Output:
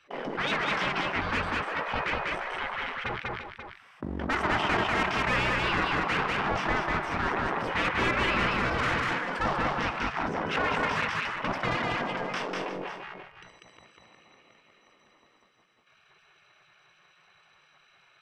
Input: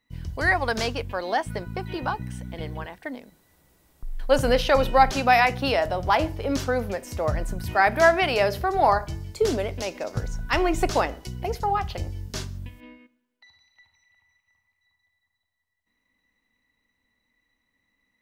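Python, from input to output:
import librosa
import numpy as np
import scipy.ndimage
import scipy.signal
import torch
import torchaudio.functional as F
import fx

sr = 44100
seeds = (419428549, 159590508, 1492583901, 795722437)

p1 = fx.lower_of_two(x, sr, delay_ms=0.36)
p2 = fx.peak_eq(p1, sr, hz=160.0, db=-10.5, octaves=0.65)
p3 = fx.leveller(p2, sr, passes=3)
p4 = scipy.signal.sosfilt(scipy.signal.butter(2, 1100.0, 'lowpass', fs=sr, output='sos'), p3)
p5 = fx.hum_notches(p4, sr, base_hz=60, count=3)
p6 = 10.0 ** (-22.5 / 20.0) * np.tanh(p5 / 10.0 ** (-22.5 / 20.0))
p7 = p5 + (p6 * 10.0 ** (-4.5 / 20.0))
p8 = fx.low_shelf(p7, sr, hz=120.0, db=-7.5)
p9 = p8 + 10.0 ** (-17.0 / 20.0) * np.pad(p8, (int(342 * sr / 1000.0), 0))[:len(p8)]
p10 = fx.spec_gate(p9, sr, threshold_db=-20, keep='weak')
p11 = p10 + 10.0 ** (-3.0 / 20.0) * np.pad(p10, (int(195 * sr / 1000.0), 0))[:len(p10)]
y = fx.env_flatten(p11, sr, amount_pct=50)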